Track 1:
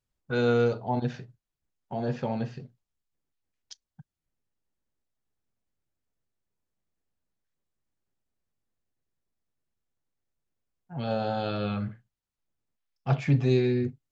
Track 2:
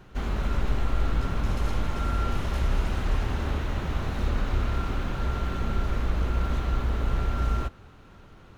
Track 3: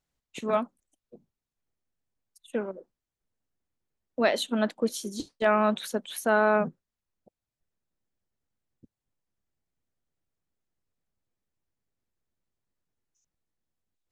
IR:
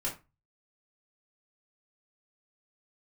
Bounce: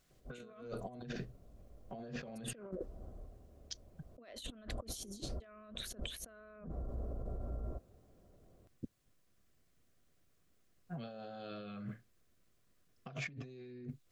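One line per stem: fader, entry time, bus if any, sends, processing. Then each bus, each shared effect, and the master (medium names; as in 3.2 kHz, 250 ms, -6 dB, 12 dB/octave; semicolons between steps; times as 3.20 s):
-8.0 dB, 0.00 s, bus A, no send, high-pass 130 Hz 24 dB/octave
-14.0 dB, 0.10 s, no bus, no send, four-pole ladder low-pass 770 Hz, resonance 45%; auto duck -18 dB, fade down 0.65 s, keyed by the first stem
+3.0 dB, 0.00 s, bus A, no send, none
bus A: 0.0 dB, compression 2.5:1, threshold -32 dBFS, peak gain reduction 11.5 dB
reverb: none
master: compressor with a negative ratio -47 dBFS, ratio -1; Butterworth band-stop 870 Hz, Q 4.9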